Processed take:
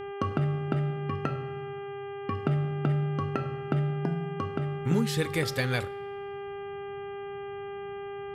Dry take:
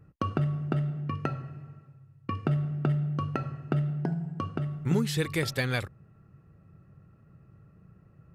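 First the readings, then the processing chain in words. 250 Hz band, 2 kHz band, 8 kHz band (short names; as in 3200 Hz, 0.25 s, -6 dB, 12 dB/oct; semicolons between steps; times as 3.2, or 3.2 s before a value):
+0.5 dB, +1.0 dB, 0.0 dB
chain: two-slope reverb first 0.53 s, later 2.2 s, from -18 dB, DRR 16 dB; buzz 400 Hz, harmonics 8, -38 dBFS -8 dB/oct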